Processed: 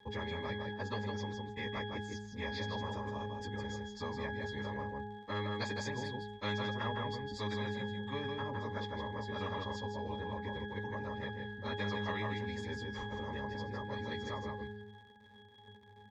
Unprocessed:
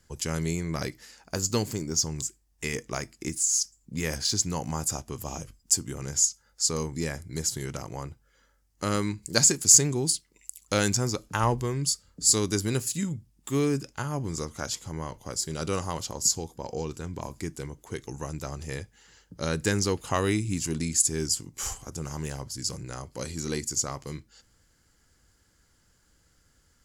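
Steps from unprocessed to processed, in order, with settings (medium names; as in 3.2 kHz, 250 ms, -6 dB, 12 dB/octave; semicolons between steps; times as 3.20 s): treble shelf 2 kHz +3.5 dB; plain phase-vocoder stretch 0.6×; gate with hold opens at -50 dBFS; distance through air 260 m; on a send: delay 159 ms -6.5 dB; on the sum: crackle 180 per s -49 dBFS; pitch-class resonator G#, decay 0.51 s; spectrum-flattening compressor 4:1; trim +5.5 dB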